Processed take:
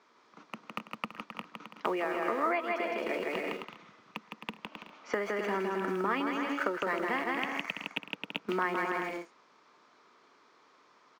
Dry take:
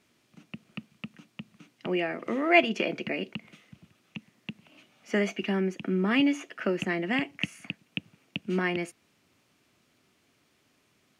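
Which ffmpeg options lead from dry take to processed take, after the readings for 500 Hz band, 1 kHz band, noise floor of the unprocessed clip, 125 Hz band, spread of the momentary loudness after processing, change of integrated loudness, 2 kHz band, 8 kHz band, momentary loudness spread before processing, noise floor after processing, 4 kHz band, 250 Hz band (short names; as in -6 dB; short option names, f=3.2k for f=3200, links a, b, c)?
-2.5 dB, +2.5 dB, -69 dBFS, -11.5 dB, 15 LU, -5.0 dB, -3.5 dB, -5.5 dB, 22 LU, -64 dBFS, -6.0 dB, -8.0 dB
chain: -filter_complex "[0:a]highpass=320,equalizer=f=460:t=q:w=4:g=6,equalizer=f=940:t=q:w=4:g=8,equalizer=f=2.8k:t=q:w=4:g=-7,lowpass=f=5.8k:w=0.5412,lowpass=f=5.8k:w=1.3066,asplit=2[a][b];[b]aeval=exprs='val(0)*gte(abs(val(0)),0.0178)':c=same,volume=-6.5dB[c];[a][c]amix=inputs=2:normalize=0,aecho=1:1:160|264|331.6|375.5|404.1:0.631|0.398|0.251|0.158|0.1,acompressor=threshold=-31dB:ratio=16,equalizer=f=1.2k:t=o:w=0.72:g=10,volume=1dB"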